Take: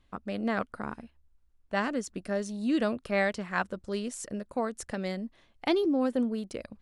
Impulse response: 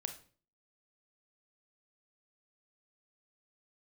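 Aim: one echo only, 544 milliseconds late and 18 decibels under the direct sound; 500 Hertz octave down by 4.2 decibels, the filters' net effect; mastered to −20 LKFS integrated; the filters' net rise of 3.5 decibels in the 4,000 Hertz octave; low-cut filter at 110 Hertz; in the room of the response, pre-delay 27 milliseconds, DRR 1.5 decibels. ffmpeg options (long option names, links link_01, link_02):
-filter_complex "[0:a]highpass=110,equalizer=frequency=500:width_type=o:gain=-5.5,equalizer=frequency=4000:width_type=o:gain=4.5,aecho=1:1:544:0.126,asplit=2[link_01][link_02];[1:a]atrim=start_sample=2205,adelay=27[link_03];[link_02][link_03]afir=irnorm=-1:irlink=0,volume=-0.5dB[link_04];[link_01][link_04]amix=inputs=2:normalize=0,volume=10.5dB"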